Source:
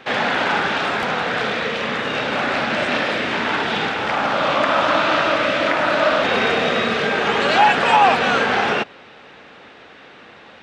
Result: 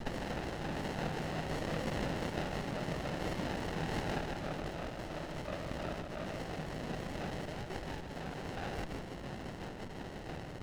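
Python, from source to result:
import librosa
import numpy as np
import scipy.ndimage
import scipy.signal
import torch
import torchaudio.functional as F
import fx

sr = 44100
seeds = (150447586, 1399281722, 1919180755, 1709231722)

y = fx.peak_eq(x, sr, hz=1000.0, db=-10.5, octaves=0.2)
y = fx.over_compress(y, sr, threshold_db=-29.0, ratio=-1.0)
y = fx.harmonic_tremolo(y, sr, hz=2.9, depth_pct=100, crossover_hz=1600.0)
y = fx.quant_dither(y, sr, seeds[0], bits=6, dither='none')
y = fx.cabinet(y, sr, low_hz=150.0, low_slope=12, high_hz=2900.0, hz=(160.0, 230.0, 680.0, 1800.0), db=(9, -10, -4, 7))
y = fx.fixed_phaser(y, sr, hz=1600.0, stages=6)
y = y + 10.0 ** (-4.0 / 20.0) * np.pad(y, (int(153 * sr / 1000.0), 0))[:len(y)]
y = fx.running_max(y, sr, window=33)
y = y * librosa.db_to_amplitude(1.0)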